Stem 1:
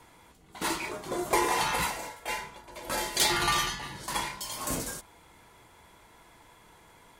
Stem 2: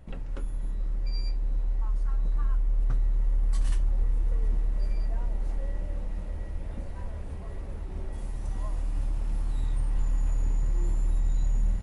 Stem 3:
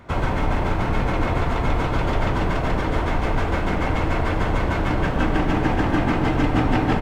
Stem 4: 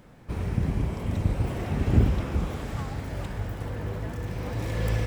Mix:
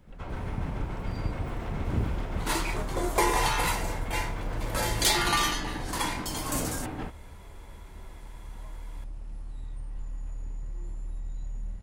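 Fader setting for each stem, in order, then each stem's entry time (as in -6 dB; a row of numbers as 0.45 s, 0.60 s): +1.0 dB, -10.5 dB, -16.5 dB, -8.5 dB; 1.85 s, 0.00 s, 0.10 s, 0.00 s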